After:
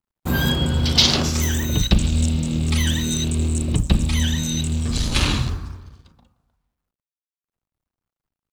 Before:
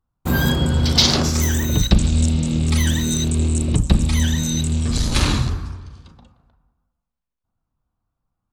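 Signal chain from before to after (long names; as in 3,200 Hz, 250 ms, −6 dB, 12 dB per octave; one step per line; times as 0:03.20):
mu-law and A-law mismatch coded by A
dynamic equaliser 2,900 Hz, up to +6 dB, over −39 dBFS, Q 2
level −2 dB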